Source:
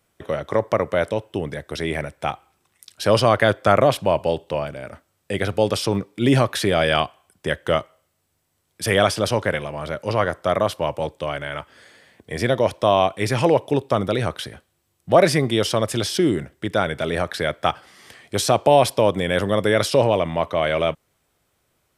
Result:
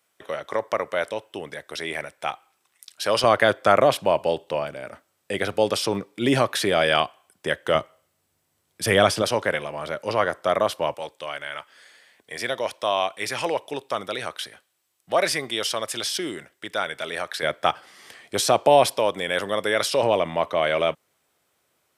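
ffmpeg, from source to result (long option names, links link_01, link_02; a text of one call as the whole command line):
ffmpeg -i in.wav -af "asetnsamples=nb_out_samples=441:pad=0,asendcmd='3.24 highpass f 330;7.75 highpass f 100;9.22 highpass f 360;10.94 highpass f 1300;17.43 highpass f 330;18.98 highpass f 760;20.03 highpass f 340',highpass=frequency=870:poles=1" out.wav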